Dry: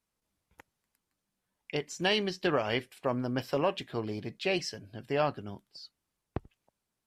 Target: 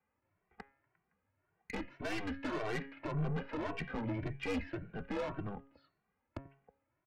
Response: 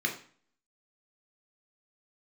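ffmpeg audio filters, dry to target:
-filter_complex "[0:a]highpass=frequency=170:width_type=q:width=0.5412,highpass=frequency=170:width_type=q:width=1.307,lowpass=frequency=2400:width_type=q:width=0.5176,lowpass=frequency=2400:width_type=q:width=0.7071,lowpass=frequency=2400:width_type=q:width=1.932,afreqshift=-100,asettb=1/sr,asplit=3[link_01][link_02][link_03];[link_01]atrim=end=1.894[link_04];[link_02]atrim=start=1.89:end=2.67,asetpts=PTS-STARTPTS,afade=type=in:duration=0.004:curve=qsin,afade=type=out:start_time=0.776:duration=0.004:curve=qsin,lowshelf=frequency=170:gain=-10[link_05];[link_03]atrim=start=2.666[link_06];[link_04][link_05]acrossfade=duration=0.004:curve1=hsin:curve2=qsin[link_07];[link_07][link_06]acrossfade=duration=0.004:curve1=qsin:curve2=hsin,alimiter=level_in=5dB:limit=-24dB:level=0:latency=1:release=119,volume=-5dB,bandreject=frequency=137:width_type=h:width=4,bandreject=frequency=274:width_type=h:width=4,bandreject=frequency=411:width_type=h:width=4,bandreject=frequency=548:width_type=h:width=4,bandreject=frequency=685:width_type=h:width=4,bandreject=frequency=822:width_type=h:width=4,bandreject=frequency=959:width_type=h:width=4,bandreject=frequency=1096:width_type=h:width=4,bandreject=frequency=1233:width_type=h:width=4,bandreject=frequency=1370:width_type=h:width=4,bandreject=frequency=1507:width_type=h:width=4,bandreject=frequency=1644:width_type=h:width=4,bandreject=frequency=1781:width_type=h:width=4,bandreject=frequency=1918:width_type=h:width=4,bandreject=frequency=2055:width_type=h:width=4,bandreject=frequency=2192:width_type=h:width=4,bandreject=frequency=2329:width_type=h:width=4,bandreject=frequency=2466:width_type=h:width=4,bandreject=frequency=2603:width_type=h:width=4,bandreject=frequency=2740:width_type=h:width=4,bandreject=frequency=2877:width_type=h:width=4,bandreject=frequency=3014:width_type=h:width=4,bandreject=frequency=3151:width_type=h:width=4,bandreject=frequency=3288:width_type=h:width=4,bandreject=frequency=3425:width_type=h:width=4,bandreject=frequency=3562:width_type=h:width=4,bandreject=frequency=3699:width_type=h:width=4,bandreject=frequency=3836:width_type=h:width=4,bandreject=frequency=3973:width_type=h:width=4,bandreject=frequency=4110:width_type=h:width=4,bandreject=frequency=4247:width_type=h:width=4,bandreject=frequency=4384:width_type=h:width=4,aeval=exprs='(tanh(126*val(0)+0.45)-tanh(0.45))/126':channel_layout=same,asplit=2[link_08][link_09];[link_09]adelay=2.1,afreqshift=1.8[link_10];[link_08][link_10]amix=inputs=2:normalize=1,volume=11dB"

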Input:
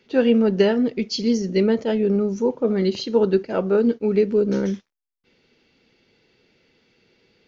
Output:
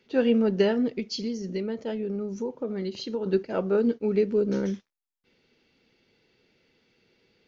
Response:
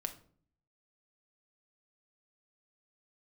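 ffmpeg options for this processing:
-filter_complex "[0:a]asettb=1/sr,asplit=3[link_01][link_02][link_03];[link_01]atrim=end=0.994[link_04];[link_02]atrim=start=0.99:end=3.26,asetpts=PTS-STARTPTS,afade=type=in:duration=0.004:curve=qsin,afade=type=out:start_time=2.266:duration=0.004:curve=qsin,acompressor=threshold=-23dB:ratio=5[link_05];[link_03]atrim=start=3.256[link_06];[link_04][link_05]acrossfade=duration=0.004:curve1=hsin:curve2=qsin[link_07];[link_07][link_06]acrossfade=duration=0.004:curve1=qsin:curve2=hsin,volume=-5dB"

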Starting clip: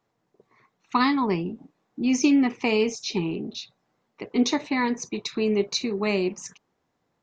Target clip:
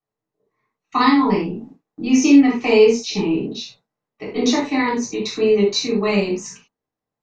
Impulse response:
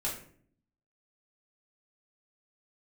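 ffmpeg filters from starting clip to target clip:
-filter_complex "[0:a]agate=range=-18dB:threshold=-51dB:ratio=16:detection=peak[link_01];[1:a]atrim=start_sample=2205,atrim=end_sample=3528,asetrate=32193,aresample=44100[link_02];[link_01][link_02]afir=irnorm=-1:irlink=0"

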